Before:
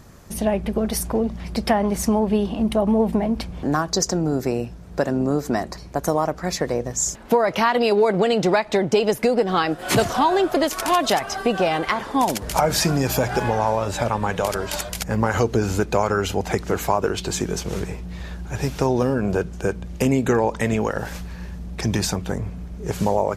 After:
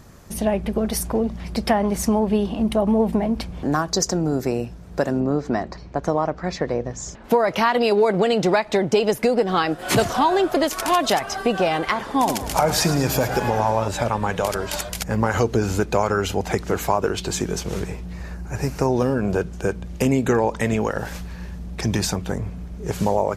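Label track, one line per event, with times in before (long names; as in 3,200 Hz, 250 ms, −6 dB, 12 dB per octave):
5.200000	7.240000	high-frequency loss of the air 140 metres
11.980000	13.880000	repeating echo 109 ms, feedback 54%, level −12 dB
18.130000	18.930000	parametric band 3,400 Hz −13.5 dB 0.39 octaves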